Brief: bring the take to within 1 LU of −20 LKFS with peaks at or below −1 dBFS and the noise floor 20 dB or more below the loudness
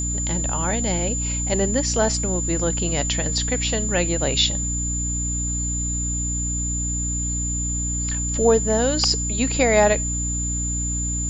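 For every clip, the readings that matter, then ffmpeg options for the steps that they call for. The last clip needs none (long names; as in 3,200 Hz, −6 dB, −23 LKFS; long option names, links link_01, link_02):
mains hum 60 Hz; hum harmonics up to 300 Hz; level of the hum −24 dBFS; interfering tone 7,100 Hz; level of the tone −25 dBFS; integrated loudness −21.5 LKFS; sample peak −4.5 dBFS; target loudness −20.0 LKFS
→ -af "bandreject=frequency=60:width_type=h:width=4,bandreject=frequency=120:width_type=h:width=4,bandreject=frequency=180:width_type=h:width=4,bandreject=frequency=240:width_type=h:width=4,bandreject=frequency=300:width_type=h:width=4"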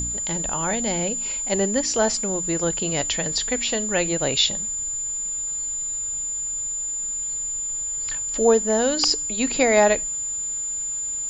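mains hum none found; interfering tone 7,100 Hz; level of the tone −25 dBFS
→ -af "bandreject=frequency=7100:width=30"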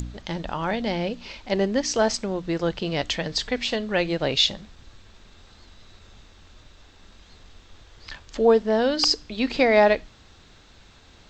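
interfering tone none found; integrated loudness −23.0 LKFS; sample peak −6.5 dBFS; target loudness −20.0 LKFS
→ -af "volume=3dB"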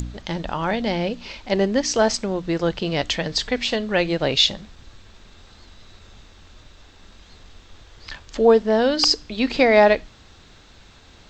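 integrated loudness −20.0 LKFS; sample peak −3.5 dBFS; background noise floor −49 dBFS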